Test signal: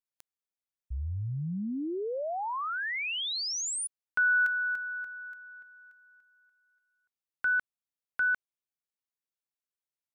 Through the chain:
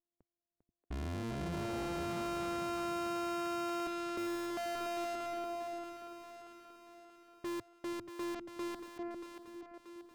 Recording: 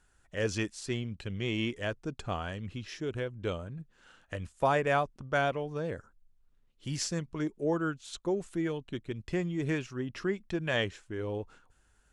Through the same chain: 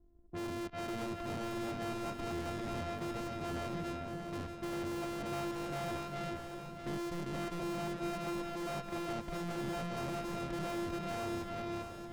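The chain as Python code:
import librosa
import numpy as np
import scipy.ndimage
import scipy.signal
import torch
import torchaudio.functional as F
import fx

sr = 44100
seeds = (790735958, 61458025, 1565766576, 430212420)

p1 = np.r_[np.sort(x[:len(x) // 128 * 128].reshape(-1, 128), axis=1).ravel(), x[len(x) // 128 * 128:]]
p2 = scipy.signal.sosfilt(scipy.signal.butter(2, 3300.0, 'lowpass', fs=sr, output='sos'), p1)
p3 = fx.echo_feedback(p2, sr, ms=399, feedback_pct=25, wet_db=-6.0)
p4 = fx.over_compress(p3, sr, threshold_db=-35.0, ratio=-0.5)
p5 = p3 + (p4 * librosa.db_to_amplitude(-2.0))
p6 = fx.peak_eq(p5, sr, hz=110.0, db=-12.5, octaves=0.26)
p7 = fx.env_lowpass(p6, sr, base_hz=330.0, full_db=-26.0)
p8 = np.clip(10.0 ** (35.5 / 20.0) * p7, -1.0, 1.0) / 10.0 ** (35.5 / 20.0)
p9 = fx.echo_split(p8, sr, split_hz=320.0, low_ms=483, high_ms=632, feedback_pct=52, wet_db=-8.0)
y = p9 * librosa.db_to_amplitude(-2.0)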